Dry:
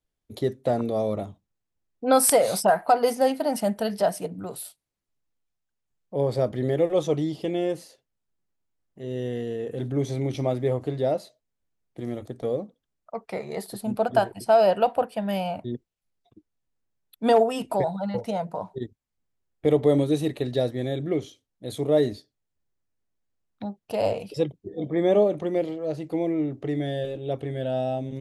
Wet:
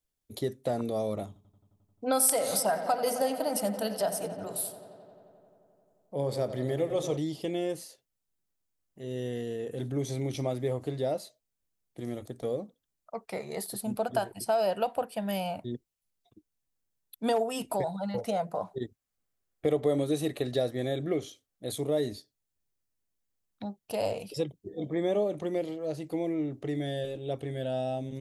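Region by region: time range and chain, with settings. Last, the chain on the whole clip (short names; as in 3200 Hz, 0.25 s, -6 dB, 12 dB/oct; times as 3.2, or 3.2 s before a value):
1.27–7.17 notches 60/120/180/240/300/360/420/480 Hz + darkening echo 88 ms, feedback 83%, low-pass 4900 Hz, level -13 dB
18.17–21.72 bell 930 Hz +6.5 dB 2.3 oct + notch 920 Hz, Q 5.5
whole clip: high shelf 5100 Hz +11 dB; compressor 2:1, threshold -22 dBFS; gain -4.5 dB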